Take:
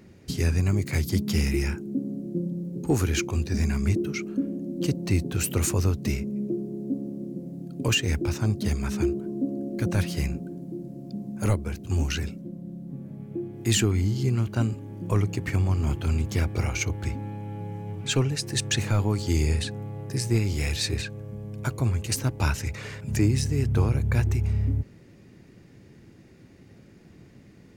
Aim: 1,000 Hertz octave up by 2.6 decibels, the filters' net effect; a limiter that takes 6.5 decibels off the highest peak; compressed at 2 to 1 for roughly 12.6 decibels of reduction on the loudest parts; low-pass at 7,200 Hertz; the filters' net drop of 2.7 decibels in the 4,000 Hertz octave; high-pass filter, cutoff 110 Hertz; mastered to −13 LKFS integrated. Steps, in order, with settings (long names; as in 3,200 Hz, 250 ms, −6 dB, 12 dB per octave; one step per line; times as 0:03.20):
high-pass filter 110 Hz
low-pass filter 7,200 Hz
parametric band 1,000 Hz +3.5 dB
parametric band 4,000 Hz −3.5 dB
downward compressor 2 to 1, threshold −43 dBFS
level +27.5 dB
brickwall limiter −2 dBFS